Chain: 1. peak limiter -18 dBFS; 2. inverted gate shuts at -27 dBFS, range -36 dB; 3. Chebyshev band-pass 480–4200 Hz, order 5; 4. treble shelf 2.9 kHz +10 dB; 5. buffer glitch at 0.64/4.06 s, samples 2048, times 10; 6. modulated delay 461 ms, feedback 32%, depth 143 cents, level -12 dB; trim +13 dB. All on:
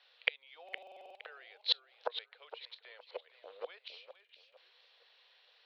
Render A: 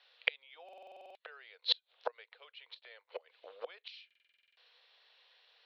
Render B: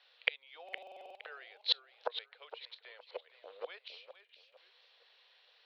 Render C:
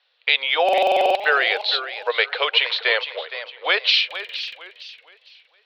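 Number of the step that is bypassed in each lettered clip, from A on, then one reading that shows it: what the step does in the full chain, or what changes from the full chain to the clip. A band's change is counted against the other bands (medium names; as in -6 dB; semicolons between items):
6, loudness change +1.5 LU; 1, momentary loudness spread change -1 LU; 2, momentary loudness spread change -7 LU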